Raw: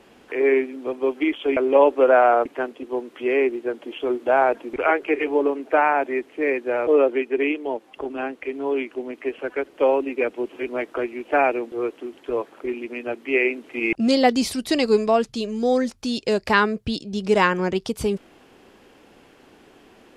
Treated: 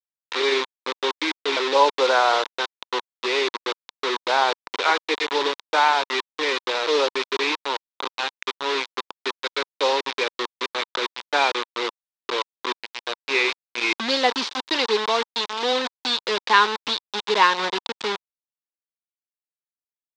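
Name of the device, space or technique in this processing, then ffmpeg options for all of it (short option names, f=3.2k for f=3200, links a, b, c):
hand-held game console: -af "acrusher=bits=3:mix=0:aa=0.000001,highpass=480,equalizer=f=650:t=q:w=4:g=-9,equalizer=f=970:t=q:w=4:g=7,equalizer=f=3.7k:t=q:w=4:g=9,lowpass=f=5.4k:w=0.5412,lowpass=f=5.4k:w=1.3066"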